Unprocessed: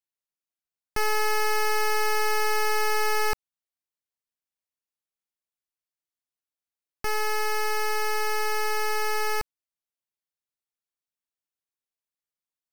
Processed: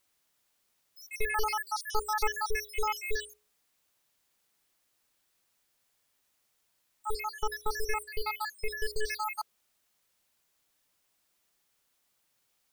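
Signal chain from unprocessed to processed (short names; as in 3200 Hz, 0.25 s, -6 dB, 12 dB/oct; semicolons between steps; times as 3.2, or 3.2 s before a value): random spectral dropouts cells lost 83%; gate -36 dBFS, range -7 dB; added noise white -75 dBFS; notches 60/120/180/240/300/360/420/480 Hz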